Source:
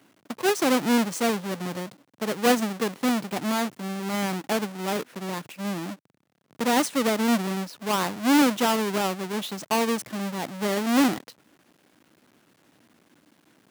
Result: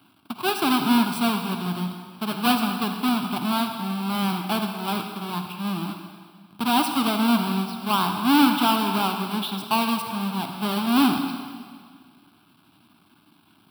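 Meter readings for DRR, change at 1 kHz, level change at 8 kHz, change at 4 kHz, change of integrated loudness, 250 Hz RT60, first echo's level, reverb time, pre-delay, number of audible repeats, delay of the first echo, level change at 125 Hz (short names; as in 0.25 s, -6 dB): 5.0 dB, +4.0 dB, -4.0 dB, +4.5 dB, +2.0 dB, 2.0 s, none, 1.9 s, 38 ms, none, none, +4.0 dB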